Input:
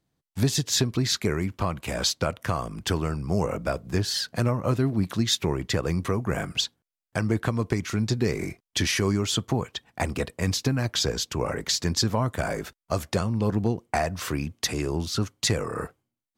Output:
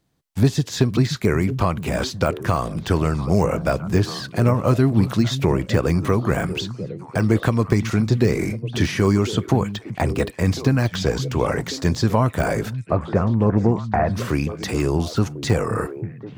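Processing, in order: de-esser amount 95%; 12.79–14.14 LPF 2000 Hz 24 dB/oct; delay with a stepping band-pass 0.525 s, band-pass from 150 Hz, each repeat 1.4 oct, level -7 dB; gain +7 dB

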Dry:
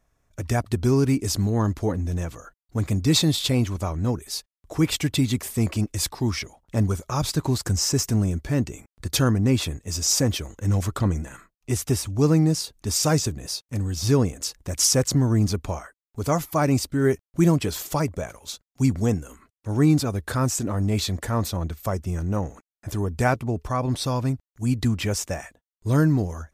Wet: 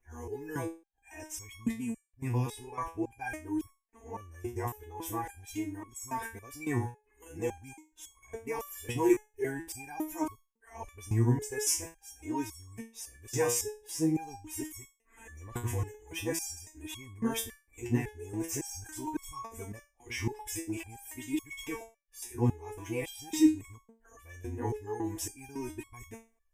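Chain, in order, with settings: whole clip reversed; fixed phaser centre 880 Hz, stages 8; stepped resonator 3.6 Hz 120–1100 Hz; gain +8 dB

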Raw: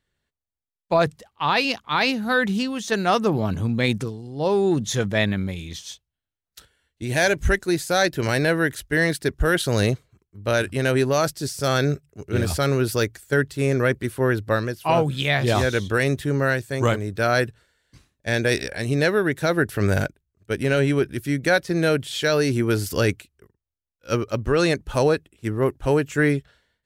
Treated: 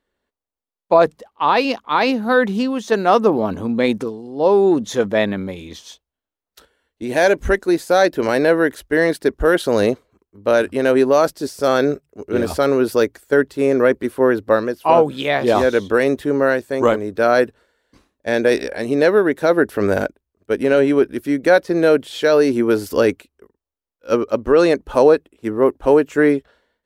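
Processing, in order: graphic EQ 125/250/500/1000/8000 Hz -11/+8/+8/+7/-3 dB; gain -1.5 dB

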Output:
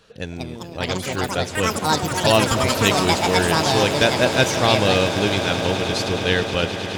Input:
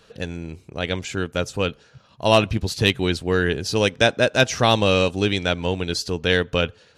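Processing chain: echoes that change speed 0.252 s, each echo +6 st, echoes 3; swelling echo 0.105 s, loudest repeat 8, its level -16 dB; gain -1 dB

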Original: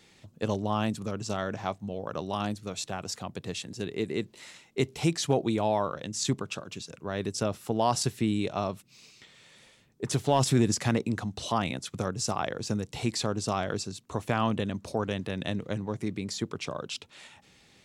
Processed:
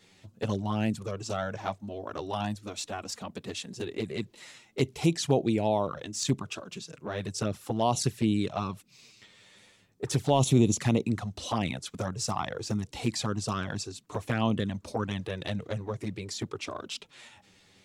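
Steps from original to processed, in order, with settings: envelope flanger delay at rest 11.3 ms, full sweep at -22 dBFS; gain +2 dB

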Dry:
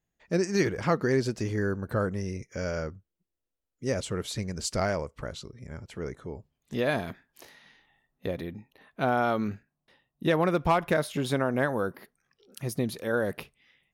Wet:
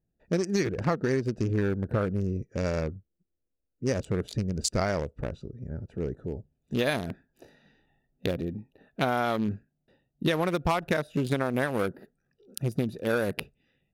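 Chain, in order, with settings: Wiener smoothing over 41 samples; high shelf 2700 Hz +3.5 dB, from 6.24 s +11.5 dB; compressor 6:1, threshold -28 dBFS, peak gain reduction 10.5 dB; gain +5.5 dB

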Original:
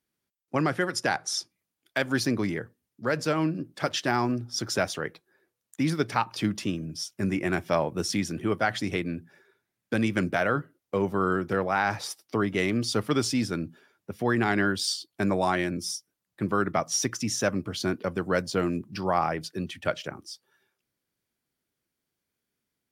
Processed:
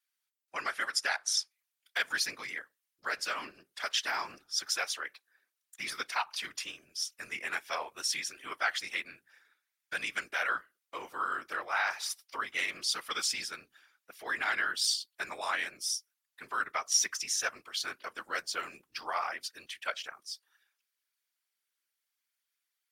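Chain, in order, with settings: HPF 1400 Hz 12 dB/oct; whisperiser

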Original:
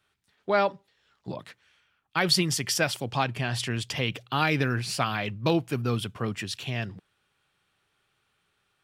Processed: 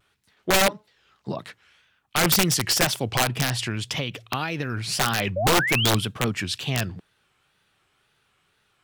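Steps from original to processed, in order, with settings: 3.5–4.92 compressor 10:1, threshold -29 dBFS, peak gain reduction 10.5 dB; 5.36–5.91 painted sound rise 580–4300 Hz -30 dBFS; wrapped overs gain 17.5 dB; wow and flutter 130 cents; gain +5.5 dB

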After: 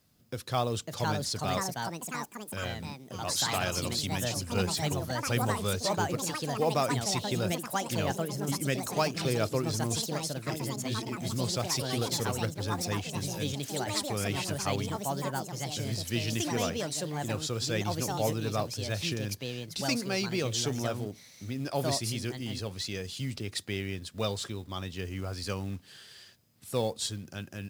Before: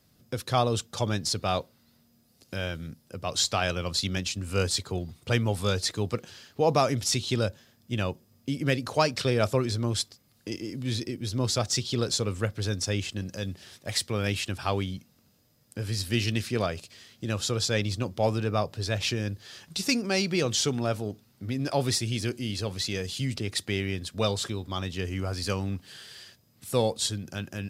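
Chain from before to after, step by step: echoes that change speed 0.617 s, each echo +4 st, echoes 3; companded quantiser 6-bit; gain -5 dB

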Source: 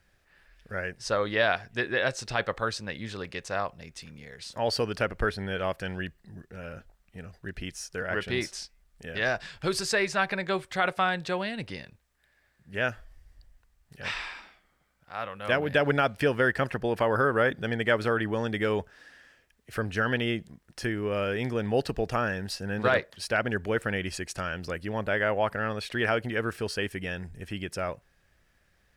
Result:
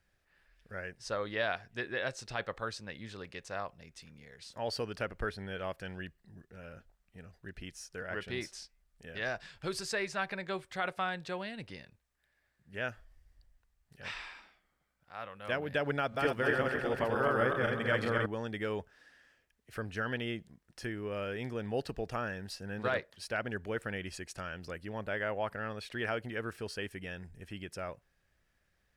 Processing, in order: 15.99–18.26 regenerating reverse delay 0.129 s, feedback 66%, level -1 dB; gain -8.5 dB

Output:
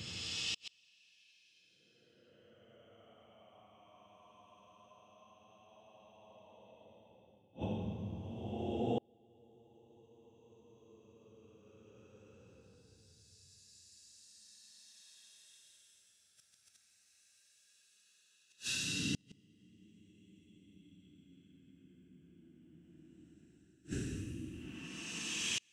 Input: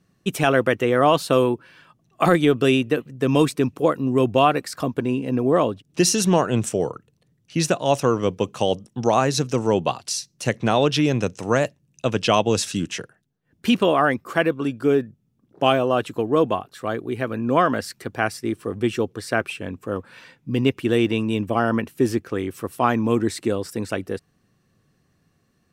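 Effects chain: reverse; compressor 8:1, threshold -29 dBFS, peak gain reduction 17.5 dB; reverse; Paulstretch 37×, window 0.05 s, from 12.22; flipped gate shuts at -30 dBFS, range -36 dB; gain +5.5 dB

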